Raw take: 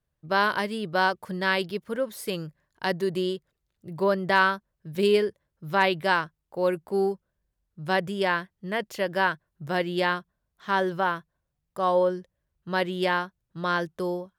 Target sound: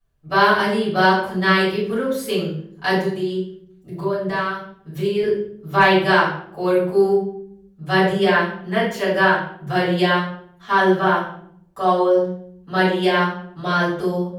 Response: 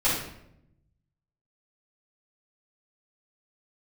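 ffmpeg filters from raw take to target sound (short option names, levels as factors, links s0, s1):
-filter_complex "[0:a]asettb=1/sr,asplit=3[s0][s1][s2];[s0]atrim=end=2.994[s3];[s1]atrim=start=2.99:end=5.23,asetpts=PTS-STARTPTS,afade=t=in:d=0.004:c=qsin,afade=t=out:st=2.236:d=0.004:c=qsin,acompressor=threshold=0.02:ratio=2.5[s4];[s2]atrim=start=5.226[s5];[s3][s4]acrossfade=d=0.004:c1=hsin:c2=qsin[s6];[s6][s5]acrossfade=d=0.004:c1=qsin:c2=hsin[s7];[1:a]atrim=start_sample=2205,asetrate=57330,aresample=44100[s8];[s7][s8]afir=irnorm=-1:irlink=0,volume=0.668"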